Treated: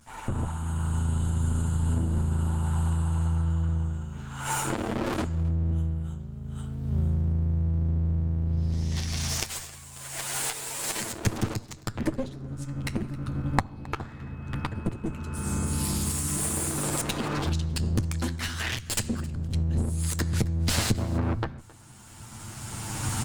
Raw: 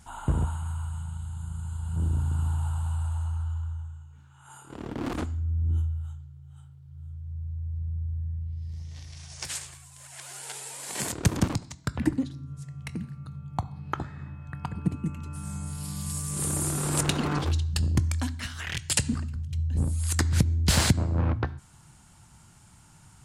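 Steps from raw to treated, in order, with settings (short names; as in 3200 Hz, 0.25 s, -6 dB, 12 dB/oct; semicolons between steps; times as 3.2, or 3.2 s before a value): minimum comb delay 9 ms; recorder AGC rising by 17 dB/s; on a send: feedback echo 0.267 s, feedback 17%, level -22 dB; on the sum: gain -2 dB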